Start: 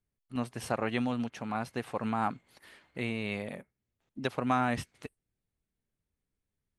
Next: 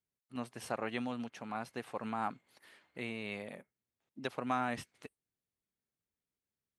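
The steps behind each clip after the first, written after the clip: high-pass 210 Hz 6 dB/octave; trim -5 dB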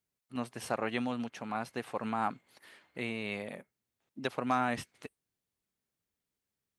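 hard clipper -21 dBFS, distortion -36 dB; trim +4 dB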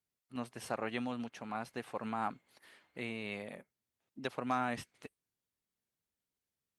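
trim -4 dB; Opus 64 kbps 48 kHz

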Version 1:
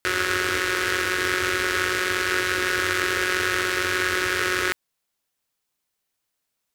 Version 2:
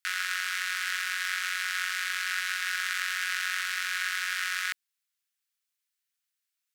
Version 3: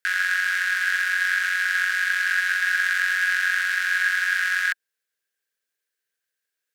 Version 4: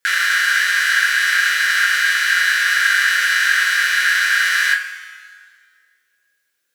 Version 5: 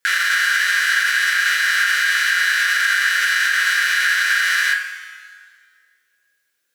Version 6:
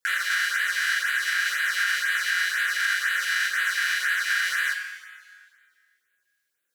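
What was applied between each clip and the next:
high-pass 1.4 kHz 24 dB/octave; trim -5.5 dB
small resonant body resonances 460/1600 Hz, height 16 dB, ringing for 20 ms
two-slope reverb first 0.23 s, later 1.9 s, from -19 dB, DRR -4.5 dB; trim +5 dB
peak limiter -8 dBFS, peak gain reduction 4.5 dB
LFO notch sine 2 Hz 420–5800 Hz; trim -6.5 dB

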